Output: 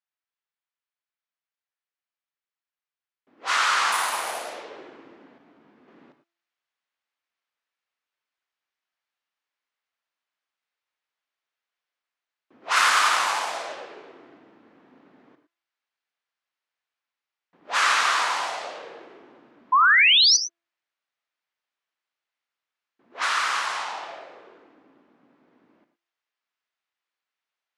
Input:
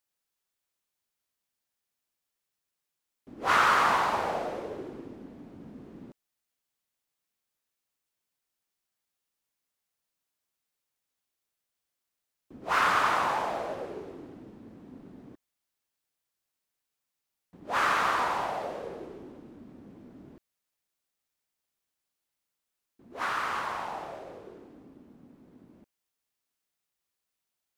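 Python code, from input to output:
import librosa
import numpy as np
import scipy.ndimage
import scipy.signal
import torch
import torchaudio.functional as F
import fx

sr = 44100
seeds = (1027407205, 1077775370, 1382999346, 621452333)

y = fx.dead_time(x, sr, dead_ms=0.054, at=(12.76, 13.72))
y = fx.low_shelf(y, sr, hz=60.0, db=-11.0)
y = fx.comb_fb(y, sr, f0_hz=340.0, decay_s=0.67, harmonics='all', damping=0.0, mix_pct=40)
y = fx.resample_bad(y, sr, factor=4, down='none', up='hold', at=(3.92, 4.53))
y = fx.weighting(y, sr, curve='ITU-R 468')
y = fx.env_lowpass(y, sr, base_hz=1700.0, full_db=-30.5)
y = fx.rider(y, sr, range_db=4, speed_s=2.0)
y = fx.spec_paint(y, sr, seeds[0], shape='rise', start_s=19.72, length_s=0.65, low_hz=980.0, high_hz=6200.0, level_db=-20.0)
y = fx.rev_gated(y, sr, seeds[1], gate_ms=130, shape='rising', drr_db=9.0)
y = fx.detune_double(y, sr, cents=46, at=(5.38, 5.88))
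y = F.gain(torch.from_numpy(y), 3.5).numpy()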